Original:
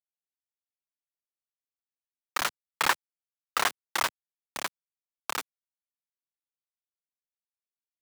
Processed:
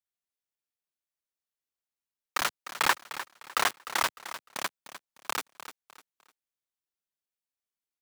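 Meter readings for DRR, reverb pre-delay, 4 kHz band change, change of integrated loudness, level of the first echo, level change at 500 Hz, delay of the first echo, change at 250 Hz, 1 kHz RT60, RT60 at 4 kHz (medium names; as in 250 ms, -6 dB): no reverb, no reverb, 0.0 dB, -0.5 dB, -13.0 dB, 0.0 dB, 302 ms, 0.0 dB, no reverb, no reverb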